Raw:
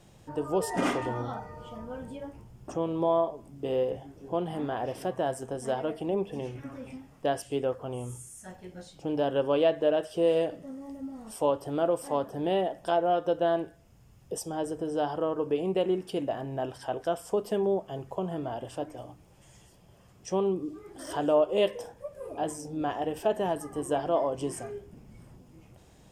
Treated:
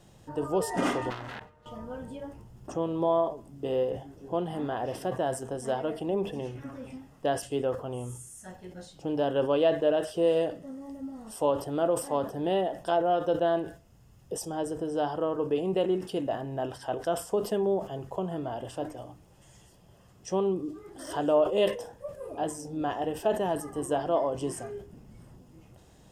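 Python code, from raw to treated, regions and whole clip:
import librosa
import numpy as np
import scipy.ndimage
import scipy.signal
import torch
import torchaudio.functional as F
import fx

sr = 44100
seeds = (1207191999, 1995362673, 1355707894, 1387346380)

y = fx.chain(x, sr, fx.self_delay(depth_ms=0.83),
    fx.level_steps(step_db=20), at=(1.1, 1.66))
y = fx.notch(y, sr, hz=2300.0, q=9.9)
y = fx.sustainer(y, sr, db_per_s=140.0)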